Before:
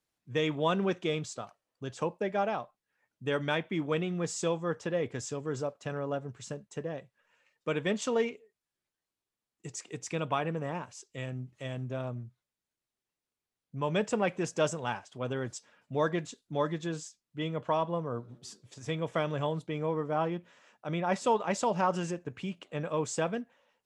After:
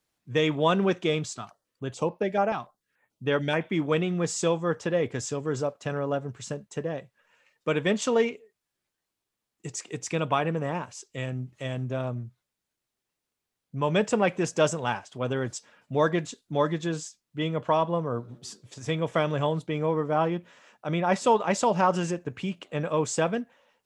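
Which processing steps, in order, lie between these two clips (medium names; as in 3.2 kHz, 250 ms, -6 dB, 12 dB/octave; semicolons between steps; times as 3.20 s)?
1.36–3.61 s: step-sequenced notch 6.9 Hz 520–7800 Hz; trim +5.5 dB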